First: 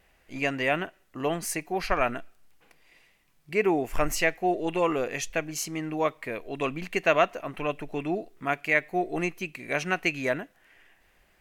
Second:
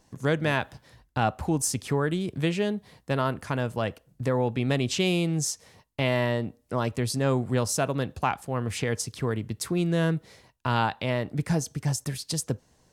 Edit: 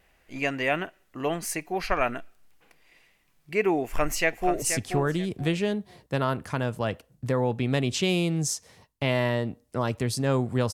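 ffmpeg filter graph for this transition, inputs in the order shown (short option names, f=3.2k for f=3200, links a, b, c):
-filter_complex "[0:a]apad=whole_dur=10.73,atrim=end=10.73,atrim=end=4.622[a];[1:a]atrim=start=1.588:end=7.7[b];[a][b]acrossfade=d=0.004:c1=hsin:c2=hsin,asplit=2[c][d];[d]afade=t=in:st=3.84:d=0.01,afade=t=out:st=4.62:d=0.01,aecho=0:1:480|960|1440:0.398107|0.0995268|0.0248817[e];[c][e]amix=inputs=2:normalize=0"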